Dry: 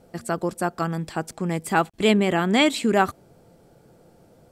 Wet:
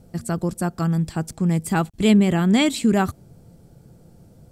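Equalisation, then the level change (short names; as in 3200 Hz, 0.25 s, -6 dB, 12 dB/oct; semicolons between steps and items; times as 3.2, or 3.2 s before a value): tone controls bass +15 dB, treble +7 dB; -4.0 dB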